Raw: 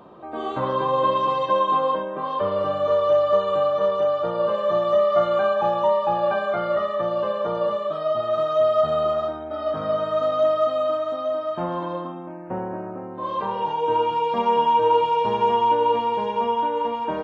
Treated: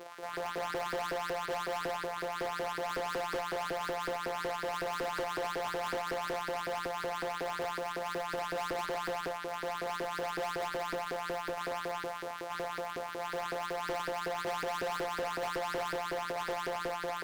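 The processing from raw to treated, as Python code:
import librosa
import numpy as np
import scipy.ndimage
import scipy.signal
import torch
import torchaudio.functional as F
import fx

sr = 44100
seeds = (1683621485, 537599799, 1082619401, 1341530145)

y = np.r_[np.sort(x[:len(x) // 256 * 256].reshape(-1, 256), axis=1).ravel(), x[len(x) // 256 * 256:]]
y = fx.filter_lfo_highpass(y, sr, shape='saw_up', hz=5.4, low_hz=390.0, high_hz=1700.0, q=3.1)
y = fx.tube_stage(y, sr, drive_db=31.0, bias=0.25)
y = fx.doppler_dist(y, sr, depth_ms=0.57)
y = F.gain(torch.from_numpy(y), -1.0).numpy()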